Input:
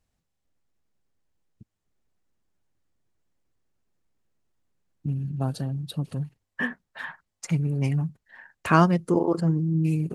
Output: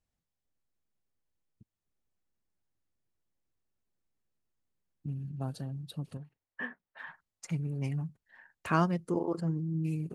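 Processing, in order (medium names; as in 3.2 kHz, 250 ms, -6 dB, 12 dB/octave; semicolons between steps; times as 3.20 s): 6.17–7.07 s: tone controls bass -9 dB, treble -13 dB; trim -9 dB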